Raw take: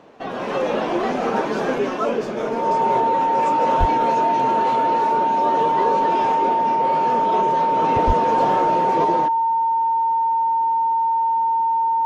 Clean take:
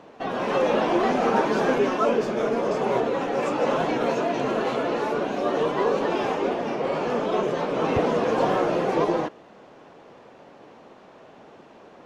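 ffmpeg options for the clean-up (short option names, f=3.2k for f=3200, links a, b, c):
-filter_complex "[0:a]bandreject=f=910:w=30,asplit=3[a][b][c];[a]afade=t=out:st=3.79:d=0.02[d];[b]highpass=f=140:w=0.5412,highpass=f=140:w=1.3066,afade=t=in:st=3.79:d=0.02,afade=t=out:st=3.91:d=0.02[e];[c]afade=t=in:st=3.91:d=0.02[f];[d][e][f]amix=inputs=3:normalize=0,asplit=3[g][h][i];[g]afade=t=out:st=8.06:d=0.02[j];[h]highpass=f=140:w=0.5412,highpass=f=140:w=1.3066,afade=t=in:st=8.06:d=0.02,afade=t=out:st=8.18:d=0.02[k];[i]afade=t=in:st=8.18:d=0.02[l];[j][k][l]amix=inputs=3:normalize=0"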